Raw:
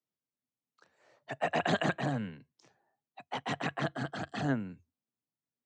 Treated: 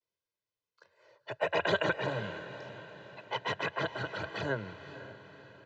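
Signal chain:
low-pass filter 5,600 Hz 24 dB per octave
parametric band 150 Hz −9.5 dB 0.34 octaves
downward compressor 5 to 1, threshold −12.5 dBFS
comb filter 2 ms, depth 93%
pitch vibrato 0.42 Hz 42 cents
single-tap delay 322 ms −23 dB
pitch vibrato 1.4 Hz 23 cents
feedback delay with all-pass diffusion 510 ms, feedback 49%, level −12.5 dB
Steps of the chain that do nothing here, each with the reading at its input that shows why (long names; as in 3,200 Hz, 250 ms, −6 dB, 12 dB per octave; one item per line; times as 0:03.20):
downward compressor, threshold −12.5 dBFS: peak of its input −17.0 dBFS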